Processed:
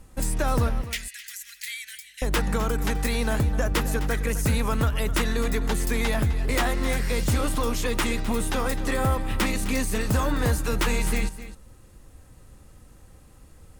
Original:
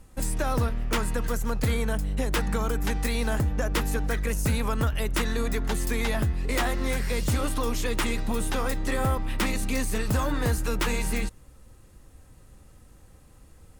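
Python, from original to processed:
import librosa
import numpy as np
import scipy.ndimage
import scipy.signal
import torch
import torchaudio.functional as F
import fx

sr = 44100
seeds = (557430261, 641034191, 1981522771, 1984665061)

y = fx.ellip_highpass(x, sr, hz=1900.0, order=4, stop_db=50, at=(0.82, 2.22))
y = y + 10.0 ** (-14.0 / 20.0) * np.pad(y, (int(258 * sr / 1000.0), 0))[:len(y)]
y = F.gain(torch.from_numpy(y), 2.0).numpy()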